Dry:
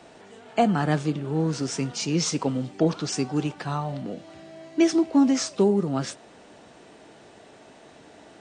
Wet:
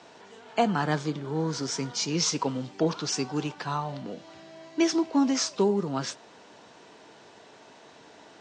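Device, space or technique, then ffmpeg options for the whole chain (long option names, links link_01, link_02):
car door speaker: -filter_complex "[0:a]asettb=1/sr,asplit=3[link_01][link_02][link_03];[link_01]atrim=end=0.874[link_04];[link_02]atrim=start=0.87:end=2.11,asetpts=PTS-STARTPTS,afade=type=in:duration=0.004:curve=qsin,afade=type=out:start_time=1.236:duration=0.004:curve=qsin,bandreject=frequency=2700:width=8.3[link_05];[link_03]atrim=start=2.106[link_06];[link_04][link_05]acrossfade=duration=0.004:curve1=hsin:curve2=qsin[link_07];[link_07][link_06]acrossfade=duration=0.004:curve1=qsin:curve2=hsin,highpass=82,equalizer=frequency=450:width_type=q:width=4:gain=3,equalizer=frequency=980:width_type=q:width=4:gain=8,equalizer=frequency=1500:width_type=q:width=4:gain=3,lowpass=frequency=6600:width=0.5412,lowpass=frequency=6600:width=1.3066,highshelf=frequency=2800:gain=9.5,volume=-5dB"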